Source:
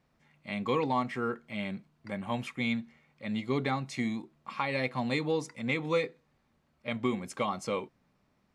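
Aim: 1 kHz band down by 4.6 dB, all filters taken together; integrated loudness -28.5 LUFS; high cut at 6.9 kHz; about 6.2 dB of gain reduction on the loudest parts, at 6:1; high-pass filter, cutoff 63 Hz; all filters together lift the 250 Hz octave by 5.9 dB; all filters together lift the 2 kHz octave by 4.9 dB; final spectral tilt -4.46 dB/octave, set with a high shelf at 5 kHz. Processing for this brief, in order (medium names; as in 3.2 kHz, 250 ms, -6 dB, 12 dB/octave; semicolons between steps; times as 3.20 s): high-pass 63 Hz; low-pass 6.9 kHz; peaking EQ 250 Hz +7 dB; peaking EQ 1 kHz -8 dB; peaking EQ 2 kHz +5.5 dB; treble shelf 5 kHz +8.5 dB; compression 6:1, threshold -27 dBFS; trim +4.5 dB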